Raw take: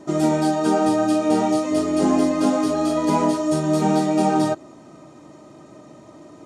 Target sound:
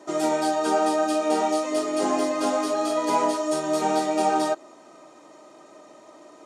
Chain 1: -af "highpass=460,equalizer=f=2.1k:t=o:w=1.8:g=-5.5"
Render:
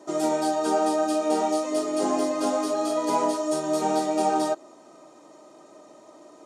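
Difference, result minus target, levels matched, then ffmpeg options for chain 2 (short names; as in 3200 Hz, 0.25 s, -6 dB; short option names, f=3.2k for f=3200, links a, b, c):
2000 Hz band -4.0 dB
-af "highpass=460"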